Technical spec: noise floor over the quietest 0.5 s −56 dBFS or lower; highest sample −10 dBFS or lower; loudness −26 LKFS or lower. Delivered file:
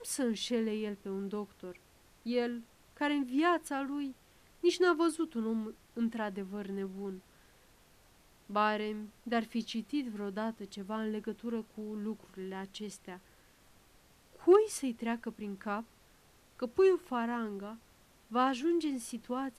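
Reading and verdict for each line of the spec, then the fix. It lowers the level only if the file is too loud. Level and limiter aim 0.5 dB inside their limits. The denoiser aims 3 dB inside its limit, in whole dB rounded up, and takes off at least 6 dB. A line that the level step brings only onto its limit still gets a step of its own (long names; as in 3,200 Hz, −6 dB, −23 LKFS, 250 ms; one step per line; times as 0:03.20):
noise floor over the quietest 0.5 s −63 dBFS: in spec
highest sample −15.0 dBFS: in spec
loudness −34.5 LKFS: in spec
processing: no processing needed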